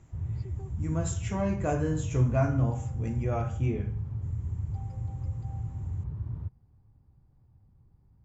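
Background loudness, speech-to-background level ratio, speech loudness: −35.5 LKFS, 5.5 dB, −30.0 LKFS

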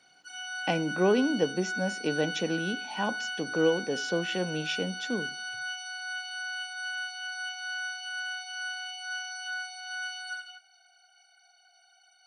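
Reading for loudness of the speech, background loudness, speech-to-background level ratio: −30.5 LKFS, −35.0 LKFS, 4.5 dB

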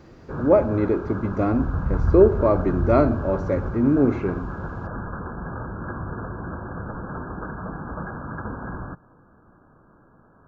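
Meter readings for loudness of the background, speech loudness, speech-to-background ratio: −31.0 LKFS, −21.5 LKFS, 9.5 dB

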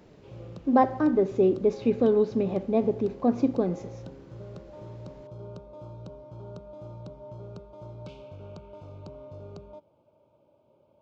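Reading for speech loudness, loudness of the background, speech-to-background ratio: −25.0 LKFS, −44.5 LKFS, 19.5 dB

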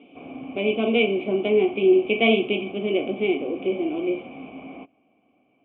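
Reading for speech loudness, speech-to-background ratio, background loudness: −22.5 LKFS, 17.5 dB, −40.0 LKFS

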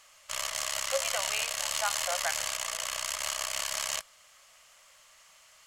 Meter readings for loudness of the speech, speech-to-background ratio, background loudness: −36.0 LKFS, −5.0 dB, −31.0 LKFS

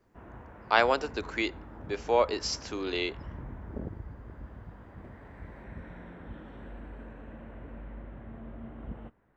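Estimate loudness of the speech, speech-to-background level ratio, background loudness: −29.5 LKFS, 16.5 dB, −46.0 LKFS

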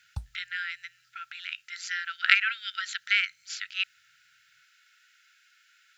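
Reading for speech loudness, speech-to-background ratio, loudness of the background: −28.5 LKFS, 14.5 dB, −43.0 LKFS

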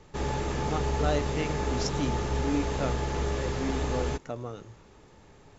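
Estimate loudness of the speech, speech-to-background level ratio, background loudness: −34.5 LKFS, −3.5 dB, −31.0 LKFS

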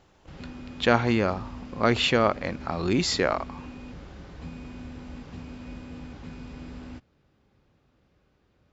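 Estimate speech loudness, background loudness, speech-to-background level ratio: −25.0 LKFS, −42.0 LKFS, 17.0 dB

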